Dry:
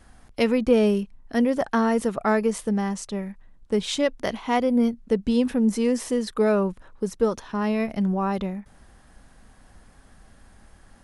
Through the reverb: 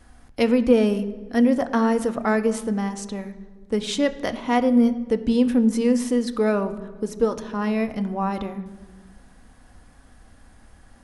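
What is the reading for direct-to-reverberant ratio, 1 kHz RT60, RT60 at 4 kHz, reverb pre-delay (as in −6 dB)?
9.0 dB, 1.4 s, 1.1 s, 3 ms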